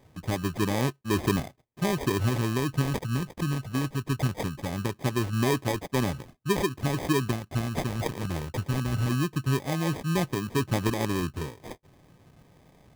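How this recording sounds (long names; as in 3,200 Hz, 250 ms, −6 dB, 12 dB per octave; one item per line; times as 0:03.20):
phaser sweep stages 2, 0.21 Hz, lowest notch 600–2,800 Hz
aliases and images of a low sample rate 1,400 Hz, jitter 0%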